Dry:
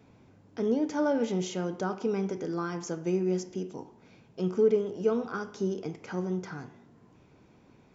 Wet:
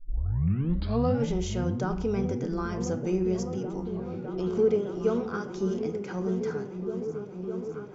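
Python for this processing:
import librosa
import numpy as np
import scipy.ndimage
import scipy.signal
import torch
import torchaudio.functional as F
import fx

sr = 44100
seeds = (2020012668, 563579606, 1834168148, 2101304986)

y = fx.tape_start_head(x, sr, length_s=1.25)
y = fx.echo_opening(y, sr, ms=607, hz=200, octaves=1, feedback_pct=70, wet_db=-3)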